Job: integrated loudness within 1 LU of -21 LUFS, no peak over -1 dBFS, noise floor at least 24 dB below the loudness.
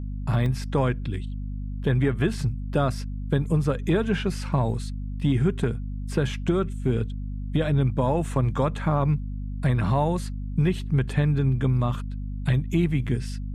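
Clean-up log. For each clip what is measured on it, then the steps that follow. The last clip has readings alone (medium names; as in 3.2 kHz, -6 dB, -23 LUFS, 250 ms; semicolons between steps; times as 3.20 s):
dropouts 1; longest dropout 1.9 ms; hum 50 Hz; highest harmonic 250 Hz; hum level -29 dBFS; loudness -25.5 LUFS; peak level -12.0 dBFS; loudness target -21.0 LUFS
-> interpolate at 0.46 s, 1.9 ms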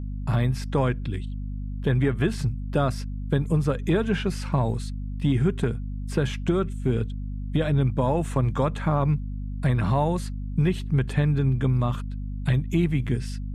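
dropouts 0; hum 50 Hz; highest harmonic 250 Hz; hum level -29 dBFS
-> de-hum 50 Hz, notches 5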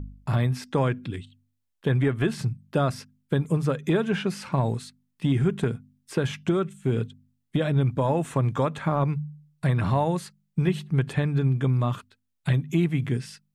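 hum not found; loudness -26.0 LUFS; peak level -12.0 dBFS; loudness target -21.0 LUFS
-> trim +5 dB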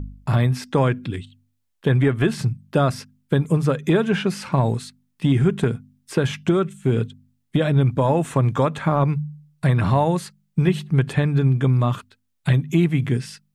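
loudness -21.0 LUFS; peak level -7.0 dBFS; noise floor -71 dBFS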